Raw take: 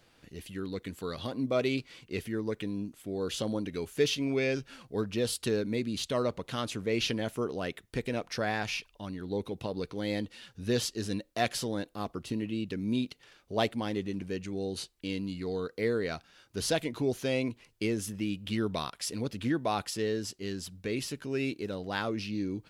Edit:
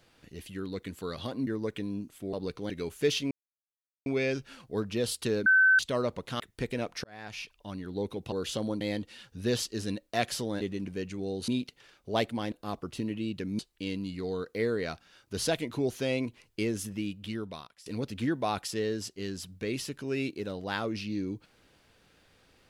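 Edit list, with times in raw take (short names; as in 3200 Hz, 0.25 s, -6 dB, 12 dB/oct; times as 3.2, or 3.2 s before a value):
1.47–2.31 cut
3.17–3.66 swap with 9.67–10.04
4.27 insert silence 0.75 s
5.67–6 bleep 1530 Hz -17.5 dBFS
6.61–7.75 cut
8.39–9.06 fade in
11.84–12.91 swap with 13.95–14.82
18.12–19.09 fade out, to -23.5 dB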